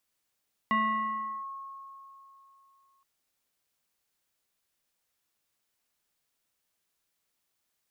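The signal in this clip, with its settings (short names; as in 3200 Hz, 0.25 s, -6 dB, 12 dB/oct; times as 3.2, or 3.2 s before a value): FM tone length 2.32 s, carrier 1090 Hz, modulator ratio 0.8, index 0.94, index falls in 0.74 s linear, decay 3.14 s, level -22 dB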